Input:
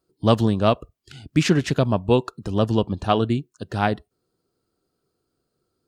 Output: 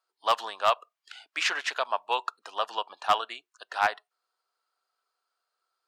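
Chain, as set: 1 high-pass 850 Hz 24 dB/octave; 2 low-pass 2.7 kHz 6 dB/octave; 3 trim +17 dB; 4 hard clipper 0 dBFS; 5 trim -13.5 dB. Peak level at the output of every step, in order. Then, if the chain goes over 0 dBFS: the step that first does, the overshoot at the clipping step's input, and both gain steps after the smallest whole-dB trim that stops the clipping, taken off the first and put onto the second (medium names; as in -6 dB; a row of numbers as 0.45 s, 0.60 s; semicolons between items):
-8.0 dBFS, -9.5 dBFS, +7.5 dBFS, 0.0 dBFS, -13.5 dBFS; step 3, 7.5 dB; step 3 +9 dB, step 5 -5.5 dB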